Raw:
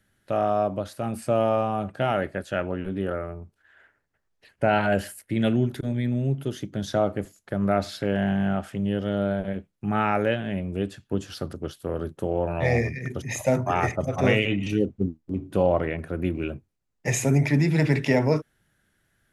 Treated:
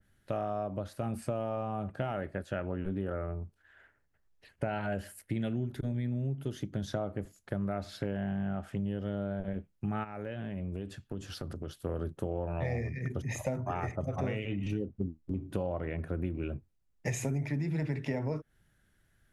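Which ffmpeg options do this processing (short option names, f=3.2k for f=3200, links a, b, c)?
-filter_complex "[0:a]asplit=3[a][b][c];[a]afade=t=out:st=10.03:d=0.02[d];[b]acompressor=threshold=-32dB:ratio=5:attack=3.2:release=140:knee=1:detection=peak,afade=t=in:st=10.03:d=0.02,afade=t=out:st=11.81:d=0.02[e];[c]afade=t=in:st=11.81:d=0.02[f];[d][e][f]amix=inputs=3:normalize=0,lowshelf=f=98:g=10.5,acompressor=threshold=-26dB:ratio=6,adynamicequalizer=threshold=0.00355:dfrequency=2200:dqfactor=0.7:tfrequency=2200:tqfactor=0.7:attack=5:release=100:ratio=0.375:range=3:mode=cutabove:tftype=highshelf,volume=-4dB"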